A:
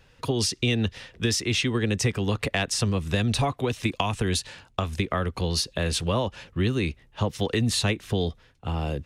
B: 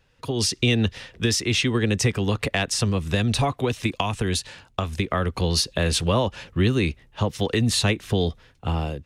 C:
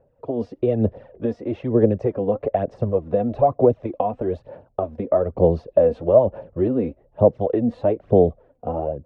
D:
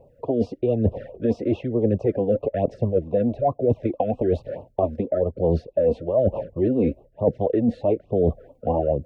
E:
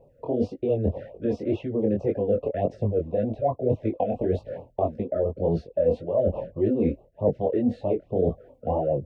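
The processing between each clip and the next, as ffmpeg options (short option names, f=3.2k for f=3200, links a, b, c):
-af "dynaudnorm=f=100:g=7:m=12dB,volume=-6.5dB"
-af "lowshelf=f=95:g=-11,aphaser=in_gain=1:out_gain=1:delay=4.2:decay=0.56:speed=1.1:type=sinusoidal,lowpass=f=600:t=q:w=4.5,volume=-1.5dB"
-af "areverse,acompressor=threshold=-25dB:ratio=10,areverse,afftfilt=real='re*(1-between(b*sr/1024,890*pow(1800/890,0.5+0.5*sin(2*PI*4.6*pts/sr))/1.41,890*pow(1800/890,0.5+0.5*sin(2*PI*4.6*pts/sr))*1.41))':imag='im*(1-between(b*sr/1024,890*pow(1800/890,0.5+0.5*sin(2*PI*4.6*pts/sr))/1.41,890*pow(1800/890,0.5+0.5*sin(2*PI*4.6*pts/sr))*1.41))':win_size=1024:overlap=0.75,volume=8dB"
-af "flanger=delay=18.5:depth=6.4:speed=1.8"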